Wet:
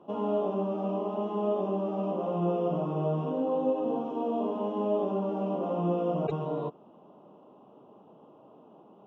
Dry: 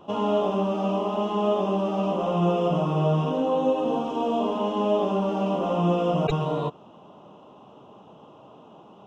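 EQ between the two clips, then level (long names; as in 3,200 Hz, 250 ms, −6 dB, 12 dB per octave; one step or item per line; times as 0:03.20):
high-pass filter 300 Hz 12 dB per octave
spectral tilt −4.5 dB per octave
−8.5 dB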